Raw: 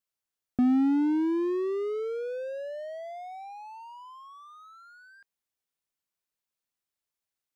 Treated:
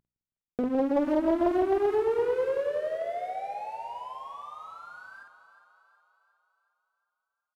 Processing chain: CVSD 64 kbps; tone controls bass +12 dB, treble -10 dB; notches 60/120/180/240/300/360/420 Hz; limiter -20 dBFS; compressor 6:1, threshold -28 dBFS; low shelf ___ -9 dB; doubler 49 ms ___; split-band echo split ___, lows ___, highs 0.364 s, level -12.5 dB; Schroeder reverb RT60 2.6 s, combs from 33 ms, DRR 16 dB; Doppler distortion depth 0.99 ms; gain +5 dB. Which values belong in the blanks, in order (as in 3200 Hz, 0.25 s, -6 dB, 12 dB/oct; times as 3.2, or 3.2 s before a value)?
110 Hz, -4 dB, 480 Hz, 0.16 s